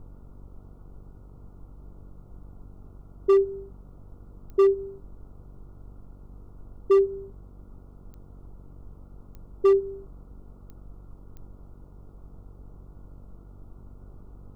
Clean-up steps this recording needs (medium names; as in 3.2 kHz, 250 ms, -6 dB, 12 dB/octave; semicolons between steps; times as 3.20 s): clip repair -14 dBFS; de-click; de-hum 47.8 Hz, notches 10; noise print and reduce 30 dB